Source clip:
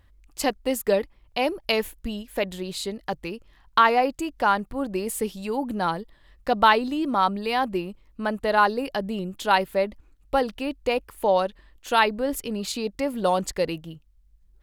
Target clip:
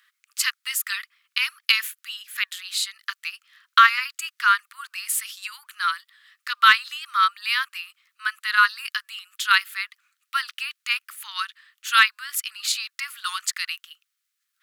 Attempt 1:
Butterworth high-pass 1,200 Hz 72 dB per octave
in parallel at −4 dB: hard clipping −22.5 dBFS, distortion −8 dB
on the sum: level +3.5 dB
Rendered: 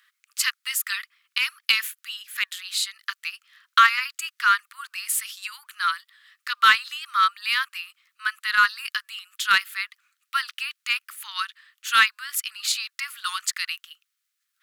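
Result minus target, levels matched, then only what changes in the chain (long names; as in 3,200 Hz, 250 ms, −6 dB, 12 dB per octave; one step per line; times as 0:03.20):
hard clipping: distortion +12 dB
change: hard clipping −14.5 dBFS, distortion −20 dB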